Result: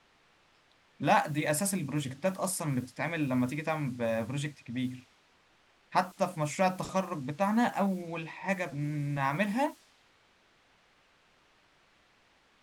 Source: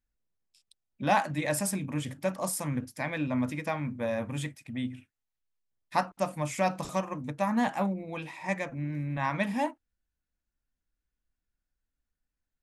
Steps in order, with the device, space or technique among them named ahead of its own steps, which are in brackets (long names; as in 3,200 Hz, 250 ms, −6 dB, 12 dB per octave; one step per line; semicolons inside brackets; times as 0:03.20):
cassette deck with a dynamic noise filter (white noise bed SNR 24 dB; low-pass that shuts in the quiet parts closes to 2,500 Hz, open at −26.5 dBFS)